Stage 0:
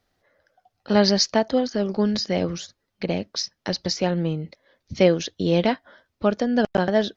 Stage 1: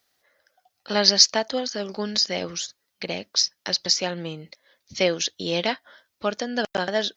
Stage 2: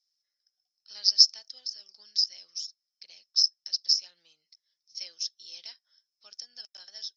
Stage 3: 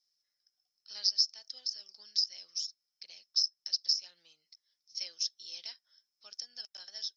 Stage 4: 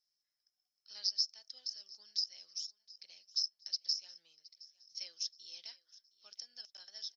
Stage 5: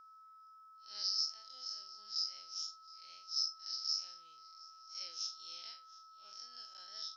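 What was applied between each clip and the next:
tilt +3.5 dB/oct; gain -1.5 dB
band-pass 5300 Hz, Q 20; gain +5.5 dB
compressor 4:1, threshold -26 dBFS, peak gain reduction 12.5 dB
feedback echo 0.718 s, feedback 38%, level -21 dB; gain -5.5 dB
time blur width 0.102 s; whine 1300 Hz -60 dBFS; gain +4 dB

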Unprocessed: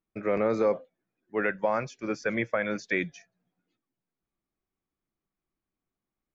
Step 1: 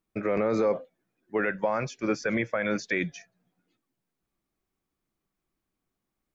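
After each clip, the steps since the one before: limiter -21.5 dBFS, peak gain reduction 7.5 dB; gain +5 dB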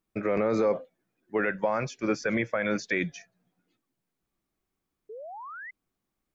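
painted sound rise, 5.09–5.71, 410–2100 Hz -41 dBFS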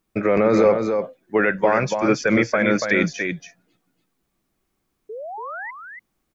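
echo 0.285 s -6 dB; gain +8.5 dB

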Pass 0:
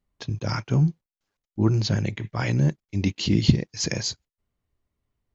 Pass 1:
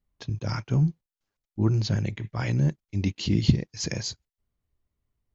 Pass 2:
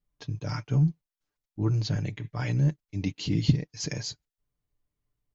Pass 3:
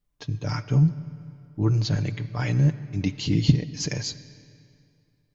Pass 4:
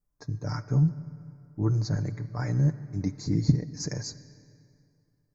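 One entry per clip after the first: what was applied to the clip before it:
low shelf 120 Hz +6 dB; gain -4.5 dB
comb 6.8 ms, depth 56%; gain -4 dB
reverb RT60 2.5 s, pre-delay 10 ms, DRR 14.5 dB; gain +4 dB
Butterworth band-stop 3000 Hz, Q 0.92; gain -3.5 dB

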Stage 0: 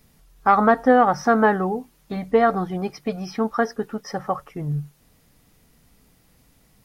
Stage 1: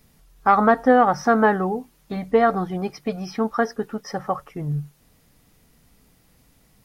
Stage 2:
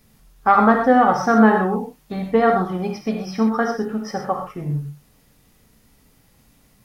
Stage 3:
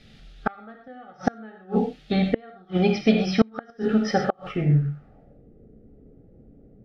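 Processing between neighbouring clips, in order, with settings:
nothing audible
non-linear reverb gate 0.15 s flat, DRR 2 dB
flipped gate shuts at -11 dBFS, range -34 dB; low-pass sweep 3600 Hz -> 430 Hz, 4.48–5.48; Butterworth band-stop 1000 Hz, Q 2.5; gain +5 dB

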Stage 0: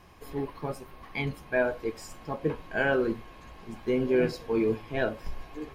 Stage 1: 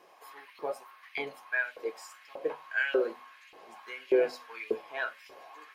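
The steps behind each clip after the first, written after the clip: LFO high-pass saw up 1.7 Hz 400–2700 Hz; notches 50/100/150/200/250 Hz; gain -4 dB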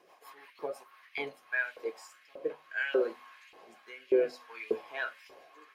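rotary speaker horn 6 Hz, later 0.6 Hz, at 0.76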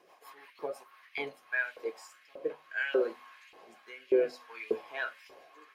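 nothing audible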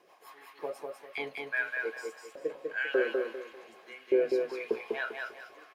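feedback echo 0.198 s, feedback 30%, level -3.5 dB

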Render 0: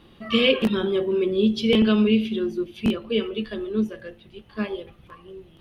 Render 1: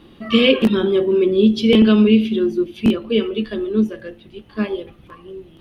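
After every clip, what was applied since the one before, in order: bell 290 Hz +6 dB 0.84 oct; gain +3.5 dB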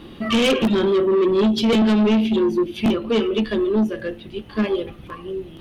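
in parallel at +0.5 dB: compressor, threshold -23 dBFS, peak gain reduction 14 dB; on the sum: soft clip -13.5 dBFS, distortion -10 dB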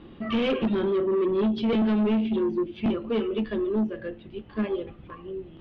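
air absorption 320 m; gain -6 dB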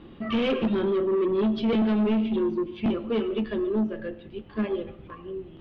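reverb RT60 0.65 s, pre-delay 65 ms, DRR 16.5 dB

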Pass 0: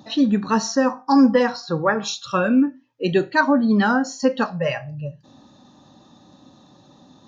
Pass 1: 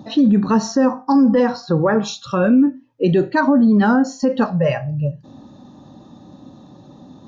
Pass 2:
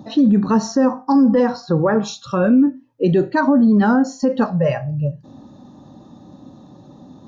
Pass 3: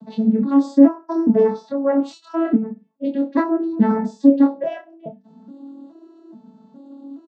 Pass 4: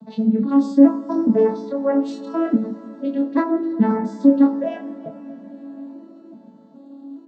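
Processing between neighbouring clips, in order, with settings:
tilt shelf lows +6 dB, about 920 Hz; limiter -11.5 dBFS, peak gain reduction 9.5 dB; gain +4 dB
bell 2800 Hz -4 dB 1.5 oct
arpeggiated vocoder major triad, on A3, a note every 0.421 s; doubler 25 ms -3.5 dB; gain -1 dB
reverb RT60 5.4 s, pre-delay 47 ms, DRR 13.5 dB; gain -1 dB

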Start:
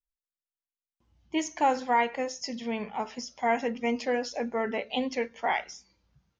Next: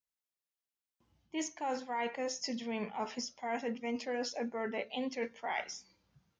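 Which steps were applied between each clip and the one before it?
HPF 100 Hz 12 dB/oct; reverse; compressor 10:1, threshold -33 dBFS, peak gain reduction 14 dB; reverse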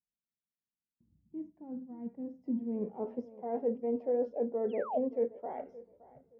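tape echo 0.571 s, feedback 27%, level -18 dB, low-pass 2400 Hz; painted sound fall, 4.69–4.98, 570–3500 Hz -30 dBFS; low-pass sweep 210 Hz -> 500 Hz, 2.16–3.16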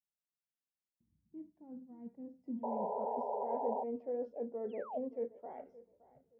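painted sound noise, 2.63–3.84, 400–1000 Hz -30 dBFS; gain -7.5 dB

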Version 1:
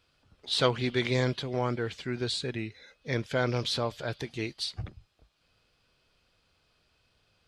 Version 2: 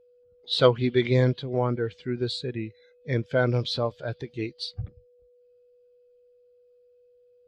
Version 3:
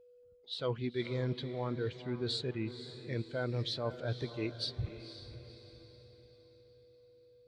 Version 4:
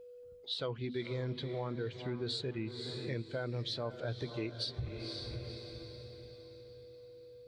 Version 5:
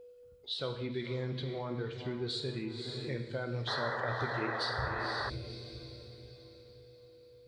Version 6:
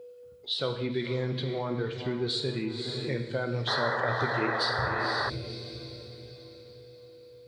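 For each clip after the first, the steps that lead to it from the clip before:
whine 490 Hz -52 dBFS; spectral expander 1.5:1; gain +6 dB
reverse; compressor 6:1, threshold -31 dBFS, peak gain reduction 17.5 dB; reverse; diffused feedback echo 0.508 s, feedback 45%, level -11.5 dB; gain -1.5 dB
notches 50/100/150/200/250 Hz; compressor 4:1, threshold -45 dBFS, peak gain reduction 13.5 dB; gain +8.5 dB
non-linear reverb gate 0.29 s falling, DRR 5 dB; painted sound noise, 3.67–5.3, 400–2000 Hz -37 dBFS
HPF 100 Hz; gain +6.5 dB

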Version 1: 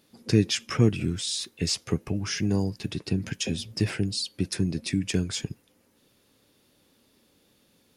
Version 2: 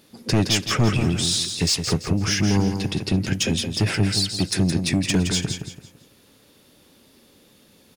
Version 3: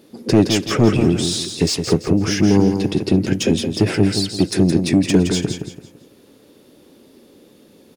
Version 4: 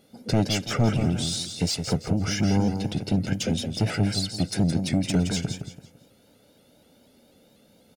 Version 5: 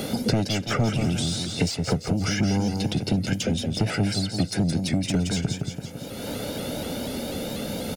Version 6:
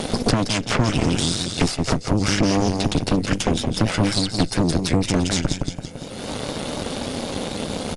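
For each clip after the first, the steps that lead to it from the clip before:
soft clip -22 dBFS, distortion -8 dB; on a send: feedback echo 0.168 s, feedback 32%, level -7 dB; on the sum: gain +8.5 dB
bell 360 Hz +12 dB 1.9 oct; gain -1 dB
comb 1.4 ms, depth 67%; shaped vibrato saw up 4.1 Hz, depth 100 cents; gain -8 dB
three-band squash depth 100%
added harmonics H 6 -9 dB, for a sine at -9.5 dBFS; downsampling 22050 Hz; gain +1.5 dB

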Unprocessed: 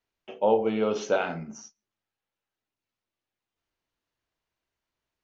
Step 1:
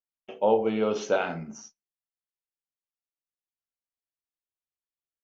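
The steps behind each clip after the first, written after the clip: gate with hold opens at -37 dBFS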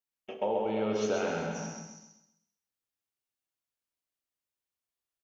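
compressor 4:1, threshold -30 dBFS, peak gain reduction 12 dB; feedback echo 0.13 s, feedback 36%, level -4 dB; non-linear reverb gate 0.4 s flat, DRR 4 dB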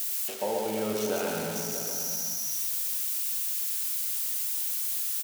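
switching spikes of -24.5 dBFS; outdoor echo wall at 110 m, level -10 dB

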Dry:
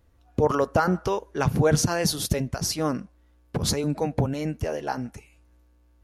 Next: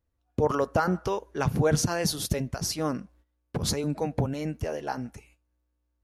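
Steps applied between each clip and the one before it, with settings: gate -54 dBFS, range -14 dB; gain -3 dB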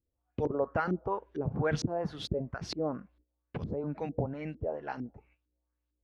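LFO low-pass saw up 2.2 Hz 300–4200 Hz; gain -7.5 dB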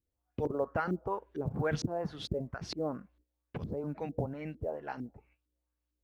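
short-mantissa float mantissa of 6-bit; gain -2 dB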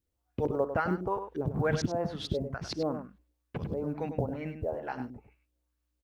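outdoor echo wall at 17 m, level -9 dB; gain +3 dB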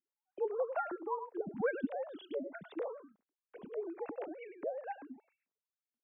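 sine-wave speech; gain -7 dB

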